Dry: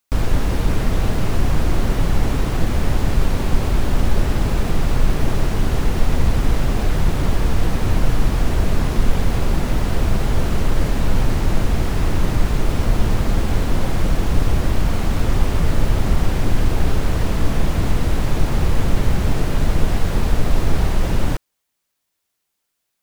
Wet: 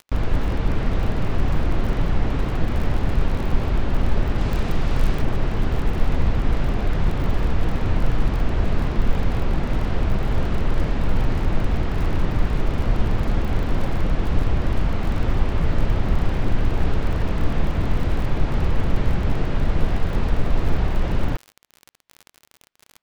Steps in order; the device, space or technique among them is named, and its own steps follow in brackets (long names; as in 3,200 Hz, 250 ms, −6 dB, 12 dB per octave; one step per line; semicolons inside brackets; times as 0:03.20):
lo-fi chain (low-pass filter 3,500 Hz 12 dB per octave; tape wow and flutter; surface crackle 51 per second −26 dBFS)
0:04.38–0:05.22: high-shelf EQ 4,200 Hz +8 dB
level −3 dB